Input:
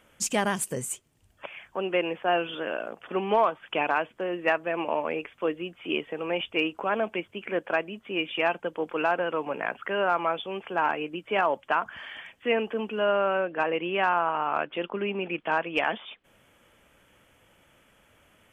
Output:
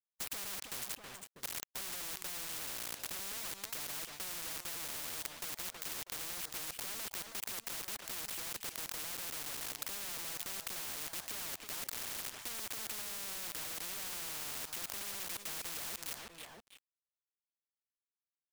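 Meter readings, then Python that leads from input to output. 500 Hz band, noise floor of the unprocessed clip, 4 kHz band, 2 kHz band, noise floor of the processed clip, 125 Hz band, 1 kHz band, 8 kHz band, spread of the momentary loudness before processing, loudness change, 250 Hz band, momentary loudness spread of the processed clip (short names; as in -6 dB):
-27.0 dB, -63 dBFS, -6.0 dB, -16.5 dB, under -85 dBFS, -15.0 dB, -22.5 dB, n/a, 8 LU, -11.5 dB, -23.0 dB, 2 LU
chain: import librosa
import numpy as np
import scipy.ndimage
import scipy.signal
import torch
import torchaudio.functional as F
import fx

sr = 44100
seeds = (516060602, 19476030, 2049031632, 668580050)

p1 = fx.env_lowpass_down(x, sr, base_hz=1300.0, full_db=-23.0)
p2 = fx.quant_companded(p1, sr, bits=2)
p3 = p2 + fx.echo_feedback(p2, sr, ms=322, feedback_pct=28, wet_db=-20, dry=0)
p4 = fx.spectral_comp(p3, sr, ratio=10.0)
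y = F.gain(torch.from_numpy(p4), 4.5).numpy()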